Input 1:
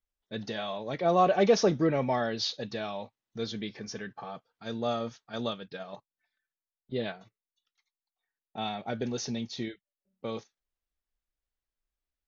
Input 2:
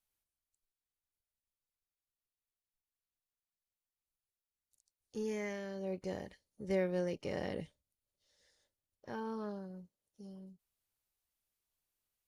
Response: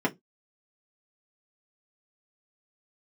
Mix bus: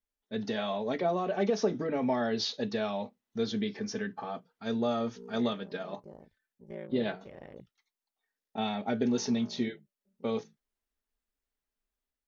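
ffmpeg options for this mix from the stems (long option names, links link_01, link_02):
-filter_complex "[0:a]acompressor=threshold=-28dB:ratio=10,volume=-4dB,asplit=2[link_01][link_02];[link_02]volume=-16dB[link_03];[1:a]afwtdn=0.00398,aeval=exprs='val(0)*sin(2*PI*28*n/s)':channel_layout=same,volume=-10dB[link_04];[2:a]atrim=start_sample=2205[link_05];[link_03][link_05]afir=irnorm=-1:irlink=0[link_06];[link_01][link_04][link_06]amix=inputs=3:normalize=0,dynaudnorm=framelen=300:gausssize=3:maxgain=3.5dB"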